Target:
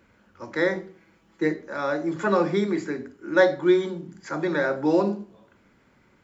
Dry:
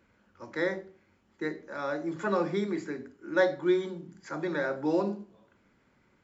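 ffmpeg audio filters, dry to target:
-filter_complex "[0:a]asettb=1/sr,asplit=3[s0][s1][s2];[s0]atrim=end=0.754[s3];[s1]atrim=start=0.75:end=1.55,asetpts=PTS-STARTPTS,afade=t=in:d=0.004:c=qsin,afade=t=out:st=0.796:d=0.004:c=qsin,aecho=1:1:6.1:0.68,atrim=end_sample=35280[s4];[s2]atrim=start=1.546[s5];[s3][s4]acrossfade=d=0.004:c1=hsin:c2=qsin[s6];[s6][s5]acrossfade=d=0.004:c1=qsin:c2=hsin,volume=2.11"

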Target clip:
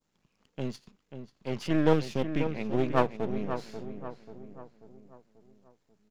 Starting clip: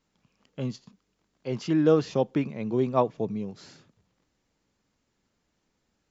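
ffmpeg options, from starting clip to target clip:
-filter_complex "[0:a]aeval=exprs='if(lt(val(0),0),0.251*val(0),val(0))':c=same,asettb=1/sr,asplit=3[s0][s1][s2];[s0]atrim=end=1.934[s3];[s1]atrim=start=1.93:end=2.54,asetpts=PTS-STARTPTS,afade=t=in:d=0.004:c=qsin,afade=t=out:st=0.606:d=0.004:c=qsin,equalizer=f=910:w=0.93:g=-10[s4];[s2]atrim=start=2.536[s5];[s3][s4]acrossfade=d=0.004:c1=hsin:c2=qsin[s6];[s6][s5]acrossfade=d=0.004:c1=qsin:c2=hsin,asplit=2[s7][s8];[s8]adelay=538,lowpass=f=2300:p=1,volume=0.355,asplit=2[s9][s10];[s10]adelay=538,lowpass=f=2300:p=1,volume=0.48,asplit=2[s11][s12];[s12]adelay=538,lowpass=f=2300:p=1,volume=0.48,asplit=2[s13][s14];[s14]adelay=538,lowpass=f=2300:p=1,volume=0.48,asplit=2[s15][s16];[s16]adelay=538,lowpass=f=2300:p=1,volume=0.48[s17];[s9][s11][s13][s15][s17]amix=inputs=5:normalize=0[s18];[s7][s18]amix=inputs=2:normalize=0,adynamicequalizer=threshold=0.00282:dfrequency=2400:dqfactor=1:tfrequency=2400:tqfactor=1:attack=5:release=100:ratio=0.375:range=2.5:mode=boostabove:tftype=bell"

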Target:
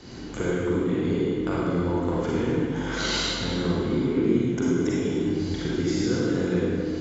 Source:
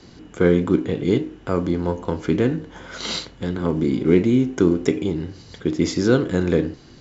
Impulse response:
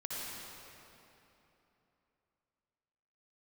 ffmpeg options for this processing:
-filter_complex "[0:a]acompressor=threshold=0.0355:ratio=6[s0];[1:a]atrim=start_sample=2205,asetrate=66150,aresample=44100[s1];[s0][s1]afir=irnorm=-1:irlink=0,volume=2.82"

